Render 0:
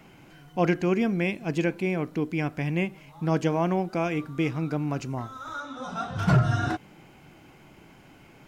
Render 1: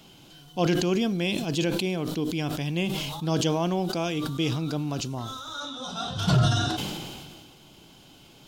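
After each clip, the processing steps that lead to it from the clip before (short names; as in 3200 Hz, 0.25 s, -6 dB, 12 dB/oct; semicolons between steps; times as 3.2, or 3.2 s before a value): resonant high shelf 2700 Hz +8 dB, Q 3; sustainer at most 30 dB/s; gain -1.5 dB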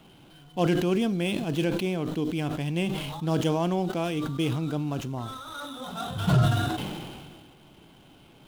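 median filter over 9 samples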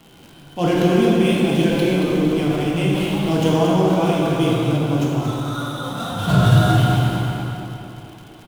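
on a send: feedback echo 0.228 s, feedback 50%, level -7 dB; on the sum: plate-style reverb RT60 2.7 s, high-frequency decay 0.6×, DRR -4.5 dB; crackle 120/s -37 dBFS; gain +2.5 dB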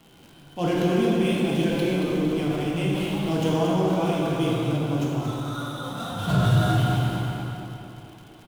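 soft clip -3.5 dBFS, distortion -27 dB; gain -5.5 dB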